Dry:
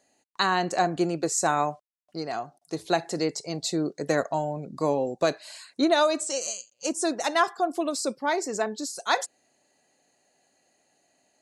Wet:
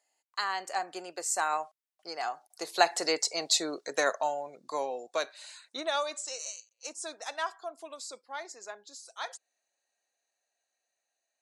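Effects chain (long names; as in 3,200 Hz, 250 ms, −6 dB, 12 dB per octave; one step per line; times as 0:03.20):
source passing by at 0:03.28, 16 m/s, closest 11 metres
high-pass filter 740 Hz 12 dB per octave
level +6 dB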